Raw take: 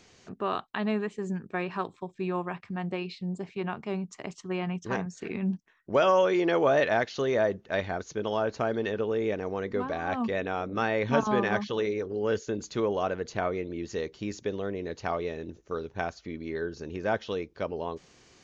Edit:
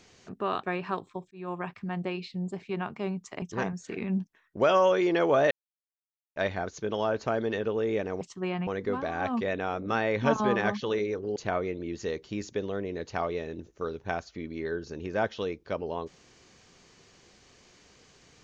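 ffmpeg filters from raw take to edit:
-filter_complex "[0:a]asplit=9[s0][s1][s2][s3][s4][s5][s6][s7][s8];[s0]atrim=end=0.632[s9];[s1]atrim=start=1.498:end=2.18,asetpts=PTS-STARTPTS,afade=t=out:st=0.678:d=0.004:c=hsin[s10];[s2]atrim=start=2.18:end=4.292,asetpts=PTS-STARTPTS,afade=t=in:d=0.31[s11];[s3]atrim=start=4.748:end=6.84,asetpts=PTS-STARTPTS,afade=t=out:st=2.088:d=0.004:c=hsin[s12];[s4]atrim=start=6.84:end=7.69,asetpts=PTS-STARTPTS,volume=0[s13];[s5]atrim=start=7.69:end=9.542,asetpts=PTS-STARTPTS,afade=t=in:d=0.004:c=hsin[s14];[s6]atrim=start=4.288:end=4.752[s15];[s7]atrim=start=9.538:end=12.232[s16];[s8]atrim=start=13.258[s17];[s10][s11]concat=n=2:v=0:a=1[s18];[s9][s18]acrossfade=d=0.004:c1=hsin:c2=hsin[s19];[s12][s13][s14]concat=n=3:v=0:a=1[s20];[s19][s20]acrossfade=d=0.004:c1=hsin:c2=hsin[s21];[s21][s15]acrossfade=d=0.004:c1=hsin:c2=hsin[s22];[s22][s16]acrossfade=d=0.004:c1=hsin:c2=hsin[s23];[s23][s17]acrossfade=d=0.004:c1=hsin:c2=hsin"

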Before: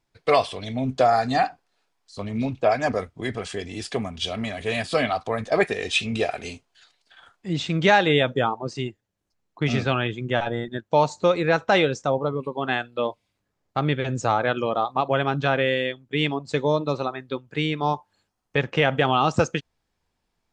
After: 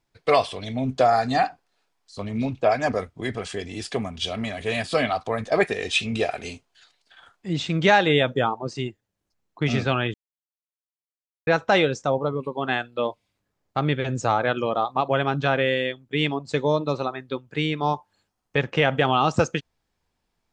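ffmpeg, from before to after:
-filter_complex "[0:a]asplit=3[s0][s1][s2];[s0]atrim=end=10.14,asetpts=PTS-STARTPTS,afade=t=out:st=10.136:d=0.004:c=hsin[s3];[s1]atrim=start=10.14:end=11.47,asetpts=PTS-STARTPTS,volume=0[s4];[s2]atrim=start=11.47,asetpts=PTS-STARTPTS,afade=t=in:d=0.004:c=hsin[s5];[s3][s4][s5]concat=n=3:v=0:a=1"

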